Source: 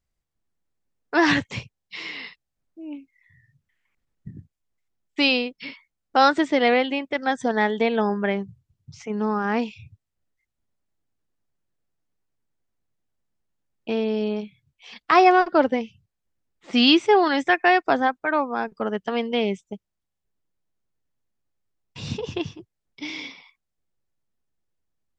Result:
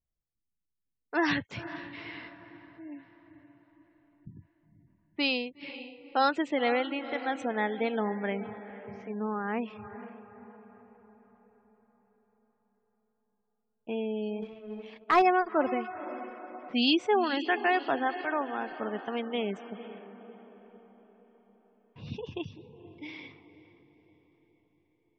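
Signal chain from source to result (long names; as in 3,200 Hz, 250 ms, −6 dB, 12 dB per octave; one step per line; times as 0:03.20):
feedback delay with all-pass diffusion 491 ms, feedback 51%, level −12.5 dB
gate on every frequency bin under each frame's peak −30 dB strong
0:14.42–0:15.22: leveller curve on the samples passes 1
low-pass that shuts in the quiet parts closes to 1,200 Hz, open at −19.5 dBFS
level −8.5 dB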